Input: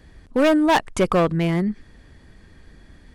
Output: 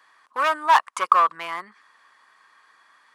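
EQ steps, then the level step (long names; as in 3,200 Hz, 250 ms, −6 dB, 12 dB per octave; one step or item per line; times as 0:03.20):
high-pass with resonance 1,100 Hz, resonance Q 6.2
−3.5 dB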